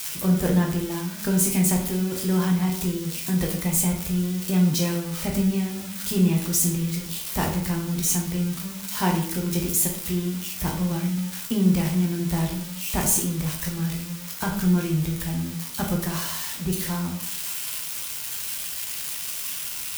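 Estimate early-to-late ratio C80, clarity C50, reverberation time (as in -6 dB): 9.5 dB, 6.5 dB, 0.55 s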